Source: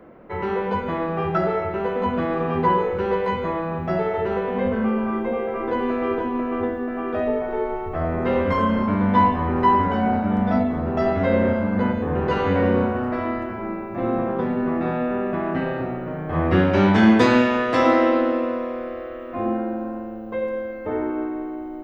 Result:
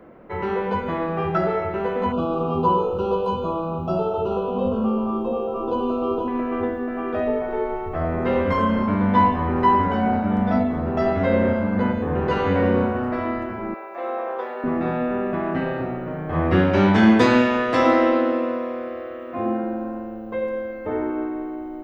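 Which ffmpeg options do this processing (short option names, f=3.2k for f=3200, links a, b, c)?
-filter_complex "[0:a]asettb=1/sr,asplit=3[a][b][c];[a]atrim=end=2.124[d];[b]atrim=start=2.12:end=6.28,asetpts=PTS-STARTPTS,afade=t=in:d=0.004:c=qsin,afade=t=out:st=4.156:d=0.004:c=qsin,asuperstop=centerf=1900:order=12:qfactor=1.6[e];[c]atrim=start=6.276[f];[d][e]acrossfade=d=0.004:c1=hsin:c2=qsin[g];[g][f]acrossfade=d=0.004:c1=qsin:c2=hsin,asettb=1/sr,asplit=3[h][i][j];[h]atrim=end=13.744[k];[i]atrim=start=13.74:end=14.64,asetpts=PTS-STARTPTS,afade=t=in:d=0.004:c=qsin,afade=t=out:st=0.896:d=0.004:c=qsin,highpass=f=470:w=0.5412,highpass=f=470:w=1.3066[l];[j]atrim=start=14.636[m];[k][l]acrossfade=d=0.004:c1=hsin:c2=qsin[n];[n][m]acrossfade=d=0.004:c1=qsin:c2=hsin,asettb=1/sr,asplit=3[o][p][q];[o]atrim=end=18.144[r];[p]atrim=start=18.14:end=19.64,asetpts=PTS-STARTPTS,afade=t=in:d=0.004:c=qsin,afade=t=out:st=1.496:d=0.004:c=qsin,highpass=84[s];[q]atrim=start=19.636[t];[r][s]acrossfade=d=0.004:c1=hsin:c2=qsin[u];[u][t]acrossfade=d=0.004:c1=qsin:c2=hsin"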